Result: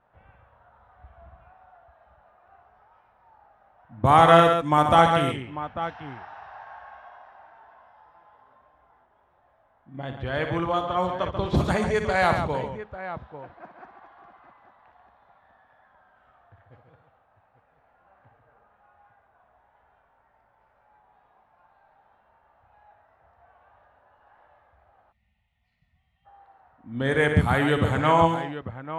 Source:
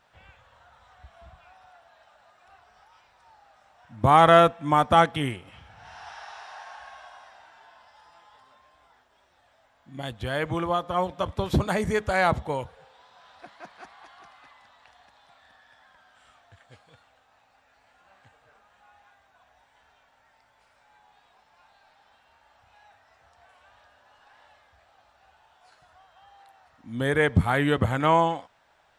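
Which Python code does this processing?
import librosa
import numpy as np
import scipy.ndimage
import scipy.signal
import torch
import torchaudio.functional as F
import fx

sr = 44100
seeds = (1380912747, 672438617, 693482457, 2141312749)

y = fx.echo_multitap(x, sr, ms=(60, 139, 845), db=(-8.5, -7.5, -12.0))
y = fx.env_lowpass(y, sr, base_hz=1200.0, full_db=-17.0)
y = fx.spec_box(y, sr, start_s=25.12, length_s=1.14, low_hz=250.0, high_hz=1800.0, gain_db=-26)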